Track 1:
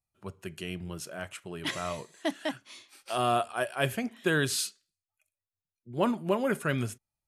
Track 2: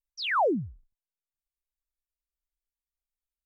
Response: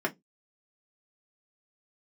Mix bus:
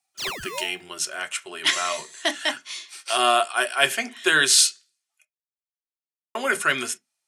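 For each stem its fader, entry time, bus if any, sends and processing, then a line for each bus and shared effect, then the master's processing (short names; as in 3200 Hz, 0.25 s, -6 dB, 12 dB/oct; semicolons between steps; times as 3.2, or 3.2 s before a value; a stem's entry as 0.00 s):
+2.5 dB, 0.00 s, muted 5.25–6.35, send -8 dB, weighting filter ITU-R 468
+1.0 dB, 0.00 s, no send, negative-ratio compressor -31 dBFS, ratio -1; polarity switched at an audio rate 770 Hz; auto duck -12 dB, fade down 1.70 s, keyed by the first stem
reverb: on, RT60 0.15 s, pre-delay 3 ms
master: dry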